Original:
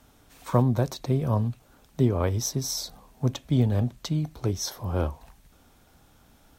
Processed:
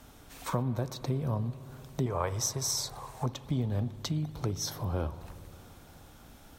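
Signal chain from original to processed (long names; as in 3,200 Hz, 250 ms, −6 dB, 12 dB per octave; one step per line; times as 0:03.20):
0:02.06–0:03.26: graphic EQ with 10 bands 250 Hz −11 dB, 500 Hz +4 dB, 1,000 Hz +10 dB, 2,000 Hz +5 dB, 8,000 Hz +9 dB
downward compressor 2.5 to 1, threshold −38 dBFS, peak gain reduction 15 dB
spring reverb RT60 4 s, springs 59 ms, chirp 65 ms, DRR 13.5 dB
level +4 dB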